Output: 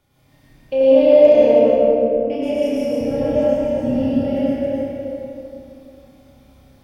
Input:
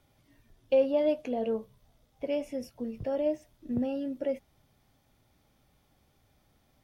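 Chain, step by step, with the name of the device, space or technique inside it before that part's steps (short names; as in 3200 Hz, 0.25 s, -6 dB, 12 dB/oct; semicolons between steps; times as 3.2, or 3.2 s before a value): regenerating reverse delay 0.161 s, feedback 54%, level -1.5 dB; 1.58–2.3 steep low-pass 590 Hz 48 dB/oct; tunnel (flutter echo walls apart 5.2 m, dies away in 0.41 s; reverb RT60 2.7 s, pre-delay 96 ms, DRR -8 dB); gain +1 dB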